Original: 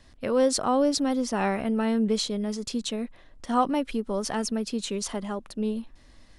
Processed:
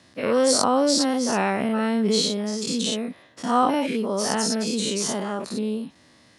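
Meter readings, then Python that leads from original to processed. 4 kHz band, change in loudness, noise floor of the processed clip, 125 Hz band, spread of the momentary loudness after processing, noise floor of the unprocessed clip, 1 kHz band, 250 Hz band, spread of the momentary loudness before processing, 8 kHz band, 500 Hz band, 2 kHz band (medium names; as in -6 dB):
+7.5 dB, +4.0 dB, -55 dBFS, +3.5 dB, 10 LU, -53 dBFS, +4.5 dB, +2.5 dB, 10 LU, +8.0 dB, +3.5 dB, +6.0 dB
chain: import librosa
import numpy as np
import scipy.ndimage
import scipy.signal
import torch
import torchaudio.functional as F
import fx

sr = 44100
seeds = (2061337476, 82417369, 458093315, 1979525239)

y = fx.spec_dilate(x, sr, span_ms=120)
y = scipy.signal.sosfilt(scipy.signal.butter(4, 110.0, 'highpass', fs=sr, output='sos'), y)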